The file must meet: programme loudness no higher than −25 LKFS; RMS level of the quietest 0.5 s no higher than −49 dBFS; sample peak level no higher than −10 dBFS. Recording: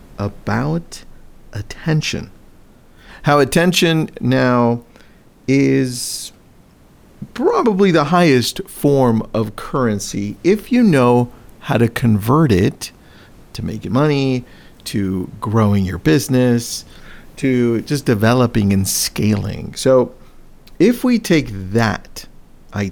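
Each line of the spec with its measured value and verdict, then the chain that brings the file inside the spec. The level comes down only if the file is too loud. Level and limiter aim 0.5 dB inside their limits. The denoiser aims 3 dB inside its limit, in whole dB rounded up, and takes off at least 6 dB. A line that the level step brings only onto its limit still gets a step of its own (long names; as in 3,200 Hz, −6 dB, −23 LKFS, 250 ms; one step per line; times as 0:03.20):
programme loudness −16.5 LKFS: out of spec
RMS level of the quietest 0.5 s −47 dBFS: out of spec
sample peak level −2.5 dBFS: out of spec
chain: level −9 dB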